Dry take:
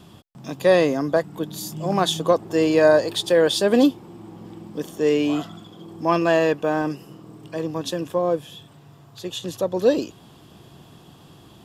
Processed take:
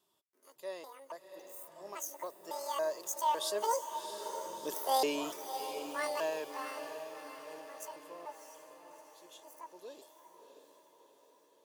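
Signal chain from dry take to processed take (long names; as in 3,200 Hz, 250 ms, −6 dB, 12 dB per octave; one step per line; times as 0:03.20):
pitch shifter gated in a rhythm +10 semitones, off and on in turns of 286 ms
source passing by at 0:04.84, 9 m/s, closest 3.4 metres
first-order pre-emphasis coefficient 0.97
hollow resonant body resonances 400/600/920 Hz, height 16 dB, ringing for 25 ms
on a send: feedback delay with all-pass diffusion 668 ms, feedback 54%, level −8.5 dB
on the sum: level +2 dB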